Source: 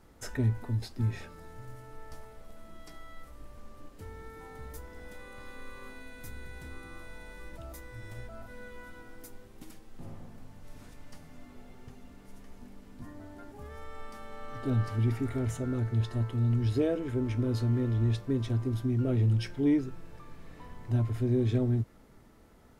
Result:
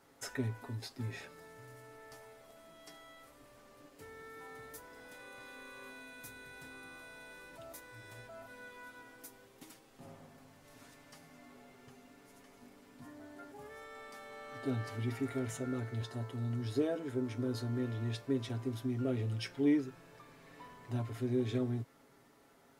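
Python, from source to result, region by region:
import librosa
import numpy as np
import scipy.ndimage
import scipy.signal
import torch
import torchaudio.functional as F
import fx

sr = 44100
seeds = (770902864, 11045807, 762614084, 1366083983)

y = fx.chain(x, sr, fx.highpass(hz=62.0, slope=12),
    fx.peak_eq(hz=2500.0, db=-5.5, octaves=0.75), at=(16.02, 17.79))
y = fx.highpass(y, sr, hz=420.0, slope=6)
y = y + 0.51 * np.pad(y, (int(7.3 * sr / 1000.0), 0))[:len(y)]
y = y * 10.0 ** (-1.5 / 20.0)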